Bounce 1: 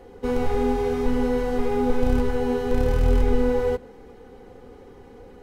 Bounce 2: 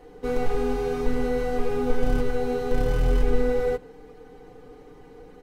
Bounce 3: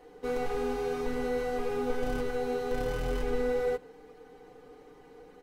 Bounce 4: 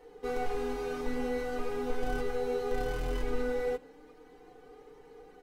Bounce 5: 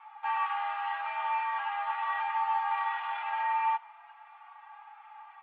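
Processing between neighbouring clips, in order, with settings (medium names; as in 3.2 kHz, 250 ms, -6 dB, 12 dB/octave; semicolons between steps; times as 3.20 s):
comb 6.6 ms, depth 75%; trim -3 dB
bass shelf 200 Hz -10.5 dB; trim -3 dB
flange 0.4 Hz, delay 2.2 ms, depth 1.5 ms, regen +52%; trim +2.5 dB
mistuned SSB +400 Hz 450–2700 Hz; trim +5.5 dB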